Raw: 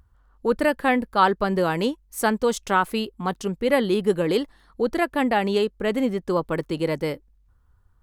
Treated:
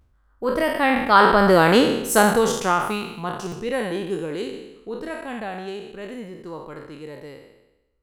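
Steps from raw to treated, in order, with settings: spectral sustain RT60 0.94 s; Doppler pass-by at 1.73 s, 21 m/s, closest 9.1 m; buffer glitch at 3.47 s, samples 256, times 8; trim +6.5 dB

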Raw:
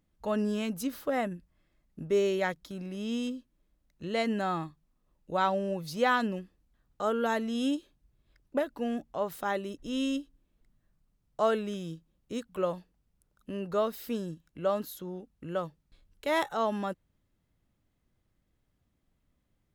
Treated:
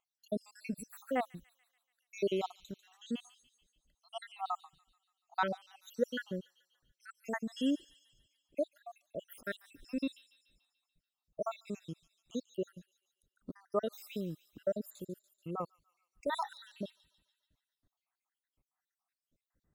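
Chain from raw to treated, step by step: random holes in the spectrogram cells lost 79%; on a send: feedback echo behind a high-pass 144 ms, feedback 56%, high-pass 4 kHz, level -10 dB; on the sum: trim -1.5 dB

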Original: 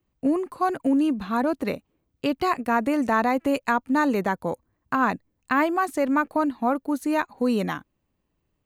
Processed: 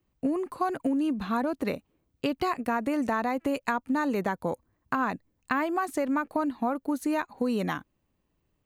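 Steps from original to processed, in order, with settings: compression, threshold -24 dBFS, peak gain reduction 7.5 dB

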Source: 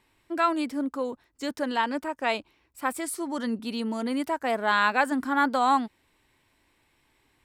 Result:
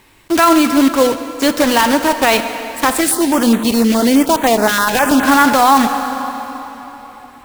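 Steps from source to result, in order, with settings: block-companded coder 3-bit; reverberation RT60 3.8 s, pre-delay 3 ms, DRR 10.5 dB; loudness maximiser +18.5 dB; 3.01–5.24 s: step-sequenced notch 9.6 Hz 940–5100 Hz; trim -1 dB

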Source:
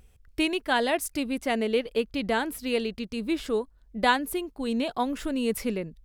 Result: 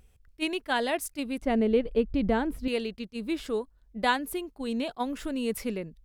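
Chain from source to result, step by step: 1.42–2.68 s: tilt EQ -3.5 dB/octave; attacks held to a fixed rise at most 600 dB/s; trim -3 dB

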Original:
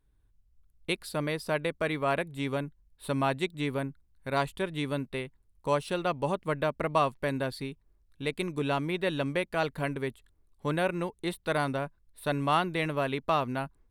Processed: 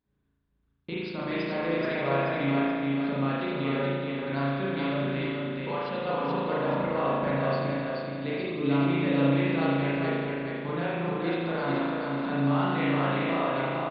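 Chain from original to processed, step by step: high-pass 58 Hz; bass shelf 90 Hz -4.5 dB; harmonic-percussive split harmonic -7 dB; peaking EQ 200 Hz +8.5 dB 1.5 oct; in parallel at -1.5 dB: level held to a coarse grid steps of 11 dB; on the sum: peak limiter -19 dBFS, peak gain reduction 8.5 dB; flange 0.33 Hz, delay 3.9 ms, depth 2.3 ms, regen -70%; on a send: feedback delay 429 ms, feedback 36%, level -3 dB; on the sum: spring tank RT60 1.6 s, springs 36 ms, chirp 50 ms, DRR -7.5 dB; resampled via 11.025 kHz; trim -3 dB

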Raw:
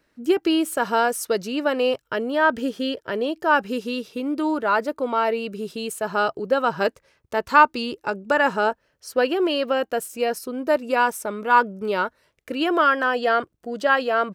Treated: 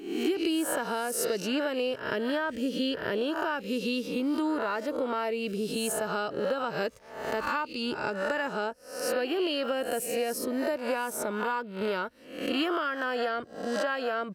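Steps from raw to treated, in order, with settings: reverse spectral sustain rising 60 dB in 0.58 s; compression 6:1, threshold -24 dBFS, peak gain reduction 15 dB; dynamic bell 1 kHz, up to -5 dB, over -38 dBFS, Q 0.74

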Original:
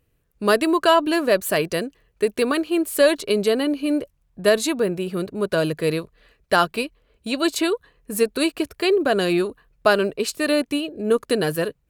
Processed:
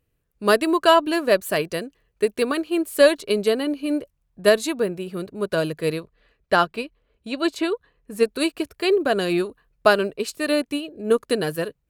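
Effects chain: 6.00–8.23 s: treble shelf 6.6 kHz -11 dB; upward expansion 1.5:1, over -26 dBFS; trim +2 dB

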